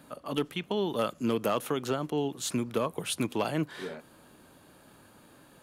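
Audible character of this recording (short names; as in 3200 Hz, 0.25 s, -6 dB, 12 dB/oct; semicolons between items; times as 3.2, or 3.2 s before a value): noise floor -58 dBFS; spectral tilt -4.5 dB/oct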